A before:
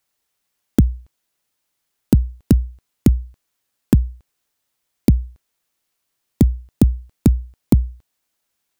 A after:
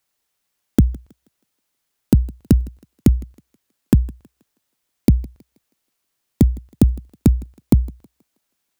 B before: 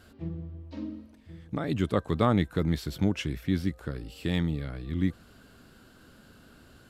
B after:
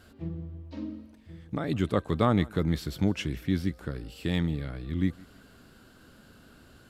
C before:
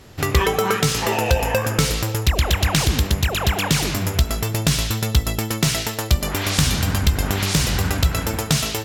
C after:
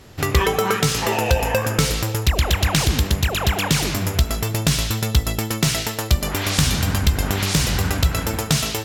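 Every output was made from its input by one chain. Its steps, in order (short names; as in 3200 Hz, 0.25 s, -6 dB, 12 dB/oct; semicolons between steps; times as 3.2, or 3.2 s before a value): thinning echo 0.16 s, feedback 41%, high-pass 240 Hz, level -22 dB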